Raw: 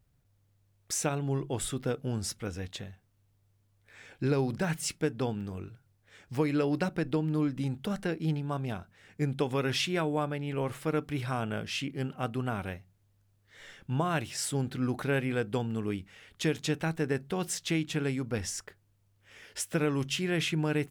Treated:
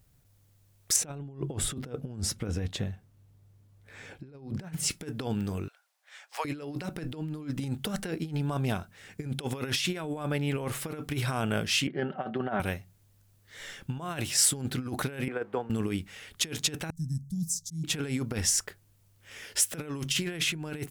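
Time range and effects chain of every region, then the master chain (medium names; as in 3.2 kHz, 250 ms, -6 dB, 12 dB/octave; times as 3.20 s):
0.96–4.91 s: high-pass 100 Hz 6 dB/octave + tilt EQ -2.5 dB/octave
5.68–6.45 s: steep high-pass 640 Hz + treble shelf 8.2 kHz -10.5 dB
11.87–12.60 s: cabinet simulation 200–3100 Hz, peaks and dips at 670 Hz +8 dB, 1.1 kHz -4 dB, 1.7 kHz +5 dB, 2.5 kHz -10 dB + comb 5.3 ms, depth 47%
15.28–15.70 s: jump at every zero crossing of -47.5 dBFS + three-band isolator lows -16 dB, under 340 Hz, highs -24 dB, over 2 kHz + upward expansion, over -41 dBFS
16.90–17.84 s: elliptic band-stop 180–6000 Hz + treble shelf 5.7 kHz -11 dB + slow attack 150 ms
whole clip: compressor with a negative ratio -33 dBFS, ratio -0.5; treble shelf 4.8 kHz +8.5 dB; trim +1.5 dB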